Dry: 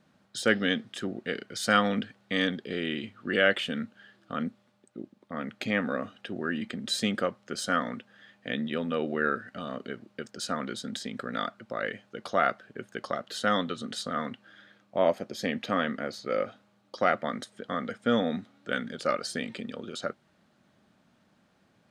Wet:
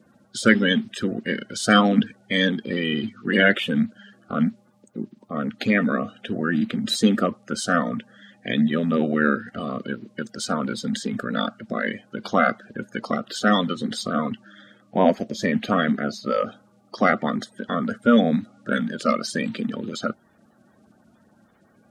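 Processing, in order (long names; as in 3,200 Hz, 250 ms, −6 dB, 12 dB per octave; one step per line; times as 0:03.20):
spectral magnitudes quantised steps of 30 dB
parametric band 220 Hz +10 dB 0.41 octaves
level +6 dB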